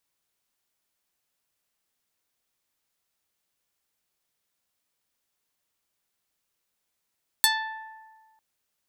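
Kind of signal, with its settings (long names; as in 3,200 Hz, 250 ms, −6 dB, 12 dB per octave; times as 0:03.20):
Karplus-Strong string A5, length 0.95 s, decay 1.57 s, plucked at 0.35, medium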